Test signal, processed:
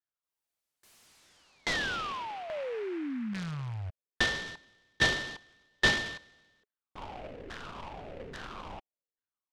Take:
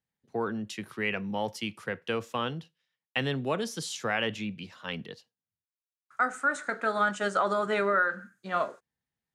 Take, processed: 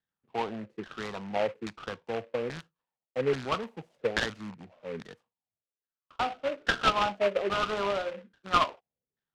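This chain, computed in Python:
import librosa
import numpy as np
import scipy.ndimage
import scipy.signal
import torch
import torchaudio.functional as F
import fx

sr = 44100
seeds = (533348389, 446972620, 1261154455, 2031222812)

y = fx.rattle_buzz(x, sr, strikes_db=-40.0, level_db=-27.0)
y = fx.filter_lfo_lowpass(y, sr, shape='saw_down', hz=1.2, low_hz=400.0, high_hz=1800.0, q=5.9)
y = fx.noise_mod_delay(y, sr, seeds[0], noise_hz=1600.0, depth_ms=0.069)
y = y * 10.0 ** (-6.0 / 20.0)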